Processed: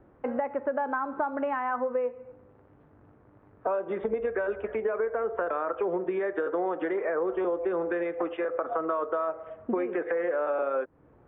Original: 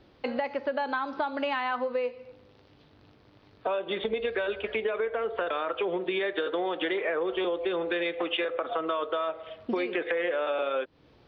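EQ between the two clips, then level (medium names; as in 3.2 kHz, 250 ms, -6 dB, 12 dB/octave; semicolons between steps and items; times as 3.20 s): low-pass 1.6 kHz 24 dB/octave; +1.0 dB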